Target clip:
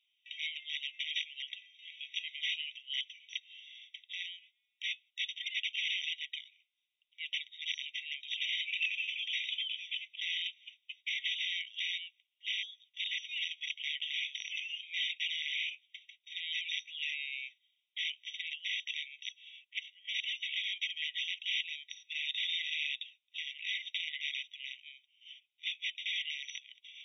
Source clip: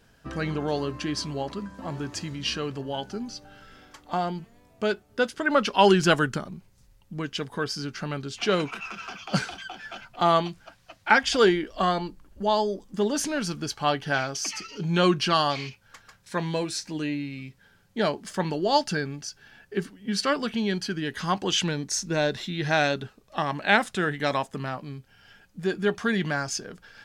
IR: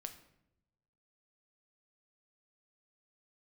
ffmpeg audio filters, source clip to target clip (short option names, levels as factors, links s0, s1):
-af "aexciter=amount=8.5:drive=3.4:freq=2200,acompressor=threshold=0.2:ratio=10,aresample=11025,aeval=exprs='(mod(5.96*val(0)+1,2)-1)/5.96':c=same,aresample=44100,agate=range=0.2:threshold=0.00708:ratio=16:detection=peak,afftfilt=real='re*eq(mod(floor(b*sr/1024/1900),2),1)':imag='im*eq(mod(floor(b*sr/1024/1900),2),1)':win_size=1024:overlap=0.75,volume=0.376"